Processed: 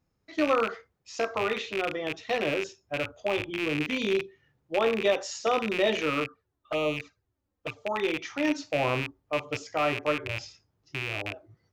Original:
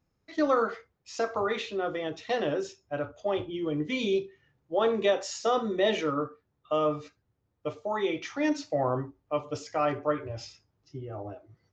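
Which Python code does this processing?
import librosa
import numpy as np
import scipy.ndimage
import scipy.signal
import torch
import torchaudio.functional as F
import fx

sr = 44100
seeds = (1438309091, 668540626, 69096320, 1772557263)

y = fx.rattle_buzz(x, sr, strikes_db=-41.0, level_db=-20.0)
y = fx.env_flanger(y, sr, rest_ms=4.0, full_db=-23.0, at=(6.24, 7.79), fade=0.02)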